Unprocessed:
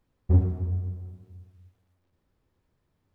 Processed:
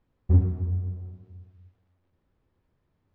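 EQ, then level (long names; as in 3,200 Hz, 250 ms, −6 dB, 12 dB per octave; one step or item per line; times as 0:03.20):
dynamic equaliser 610 Hz, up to −6 dB, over −47 dBFS, Q 1.3
high-frequency loss of the air 170 metres
+1.0 dB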